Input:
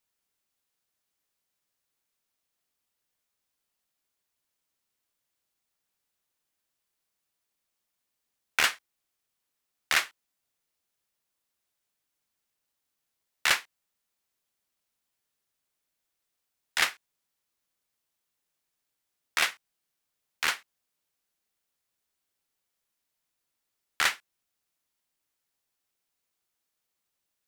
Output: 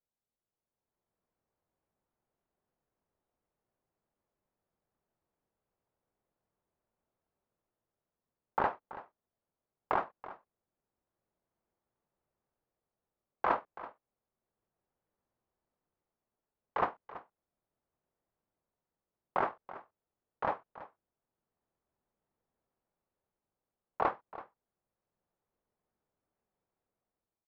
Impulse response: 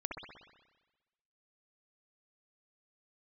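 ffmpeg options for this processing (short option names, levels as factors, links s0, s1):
-filter_complex "[0:a]dynaudnorm=f=360:g=5:m=3.76,lowpass=1400,bandreject=f=490:w=12,asetrate=25476,aresample=44100,atempo=1.73107,asplit=2[s0][s1];[s1]aecho=0:1:330:0.158[s2];[s0][s2]amix=inputs=2:normalize=0,volume=0.531"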